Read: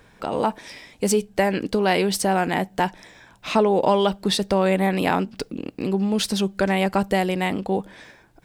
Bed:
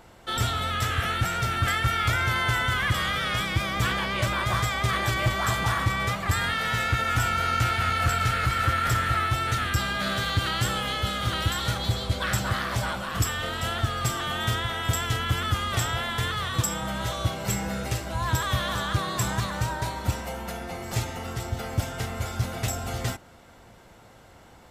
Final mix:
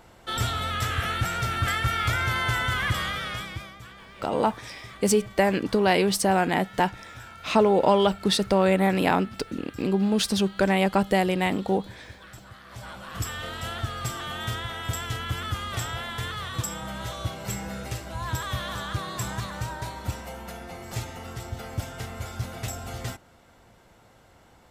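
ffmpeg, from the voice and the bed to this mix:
-filter_complex "[0:a]adelay=4000,volume=-1dB[a];[1:a]volume=14.5dB,afade=t=out:st=2.9:d=0.89:silence=0.112202,afade=t=in:st=12.63:d=0.72:silence=0.16788[b];[a][b]amix=inputs=2:normalize=0"

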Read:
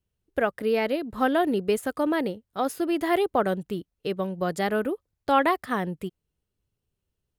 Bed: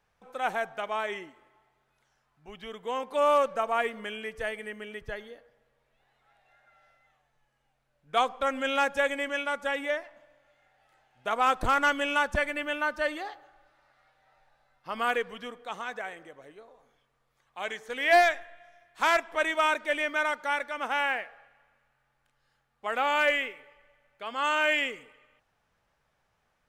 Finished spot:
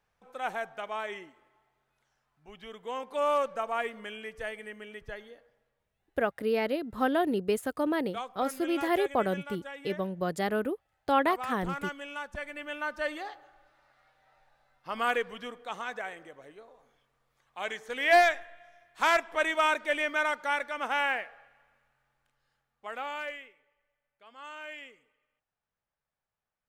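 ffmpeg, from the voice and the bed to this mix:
-filter_complex "[0:a]adelay=5800,volume=-4dB[a];[1:a]volume=8dB,afade=t=out:st=5.51:d=0.42:silence=0.375837,afade=t=in:st=12.32:d=1.16:silence=0.251189,afade=t=out:st=21.76:d=1.68:silence=0.141254[b];[a][b]amix=inputs=2:normalize=0"

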